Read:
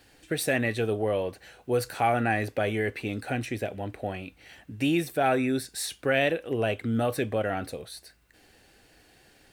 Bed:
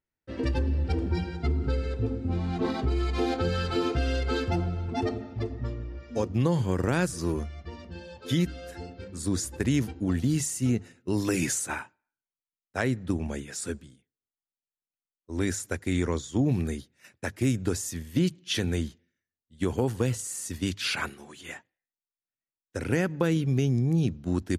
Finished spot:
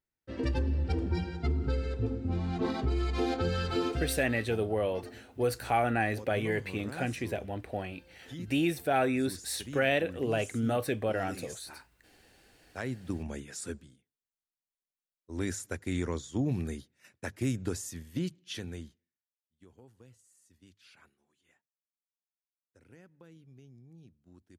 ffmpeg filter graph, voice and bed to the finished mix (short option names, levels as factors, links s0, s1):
-filter_complex "[0:a]adelay=3700,volume=0.708[s0];[1:a]volume=2.82,afade=t=out:st=3.82:d=0.45:silence=0.188365,afade=t=in:st=12.3:d=1.03:silence=0.251189,afade=t=out:st=17.63:d=1.79:silence=0.0595662[s1];[s0][s1]amix=inputs=2:normalize=0"